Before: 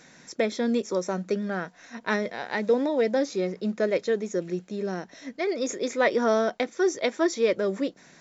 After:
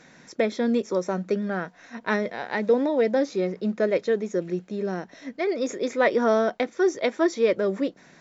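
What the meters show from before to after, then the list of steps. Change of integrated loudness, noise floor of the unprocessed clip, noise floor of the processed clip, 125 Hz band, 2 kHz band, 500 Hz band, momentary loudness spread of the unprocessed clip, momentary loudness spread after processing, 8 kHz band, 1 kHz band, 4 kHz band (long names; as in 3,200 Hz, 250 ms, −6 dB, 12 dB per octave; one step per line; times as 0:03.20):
+1.5 dB, −55 dBFS, −54 dBFS, +2.0 dB, +1.0 dB, +2.0 dB, 9 LU, 9 LU, can't be measured, +1.5 dB, −1.5 dB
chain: low-pass filter 3,300 Hz 6 dB per octave
level +2 dB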